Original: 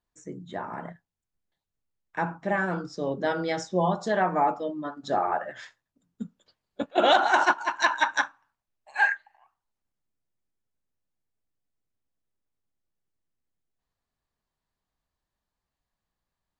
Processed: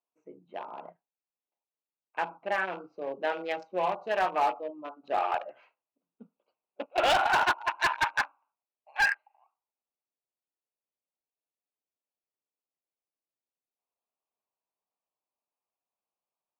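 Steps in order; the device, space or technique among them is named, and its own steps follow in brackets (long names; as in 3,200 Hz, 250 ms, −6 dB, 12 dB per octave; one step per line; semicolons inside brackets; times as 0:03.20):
adaptive Wiener filter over 25 samples
0:06.95–0:08.21: high-pass filter 290 Hz 12 dB per octave
megaphone (band-pass filter 560–3,200 Hz; parametric band 2,600 Hz +10 dB 0.37 octaves; hard clipping −19.5 dBFS, distortion −11 dB)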